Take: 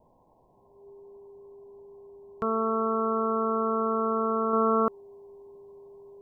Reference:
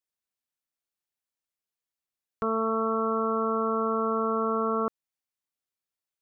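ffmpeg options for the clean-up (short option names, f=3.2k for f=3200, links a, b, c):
-af "bandreject=f=400:w=30,afwtdn=0.0032,asetnsamples=n=441:p=0,asendcmd='4.53 volume volume -3.5dB',volume=0dB"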